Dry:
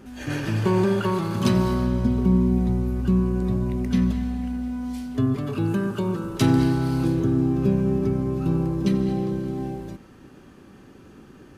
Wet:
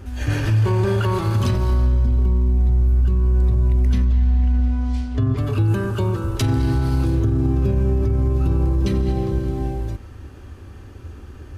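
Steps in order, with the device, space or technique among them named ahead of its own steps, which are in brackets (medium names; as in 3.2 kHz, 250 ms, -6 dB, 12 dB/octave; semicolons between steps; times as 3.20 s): 4.05–5.37 s: low-pass 5.7 kHz 12 dB/octave; car stereo with a boomy subwoofer (resonant low shelf 120 Hz +11.5 dB, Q 3; peak limiter -15.5 dBFS, peak gain reduction 11.5 dB); trim +4 dB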